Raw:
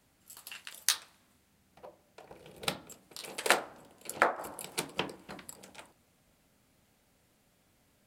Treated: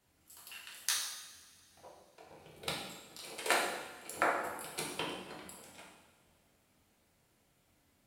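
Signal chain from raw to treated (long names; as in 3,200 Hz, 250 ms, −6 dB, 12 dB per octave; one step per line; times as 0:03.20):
coupled-rooms reverb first 0.95 s, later 3.2 s, from −19 dB, DRR −3.5 dB
level −7.5 dB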